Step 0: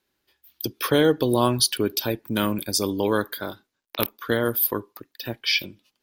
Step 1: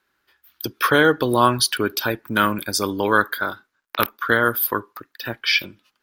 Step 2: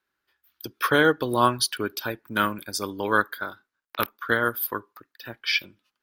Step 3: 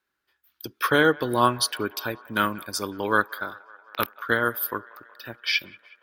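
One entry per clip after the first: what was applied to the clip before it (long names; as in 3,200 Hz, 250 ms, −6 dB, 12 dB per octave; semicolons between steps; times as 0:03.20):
parametric band 1,400 Hz +13.5 dB 1.1 octaves
expander for the loud parts 1.5 to 1, over −27 dBFS; level −3 dB
delay with a band-pass on its return 184 ms, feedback 69%, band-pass 1,200 Hz, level −20.5 dB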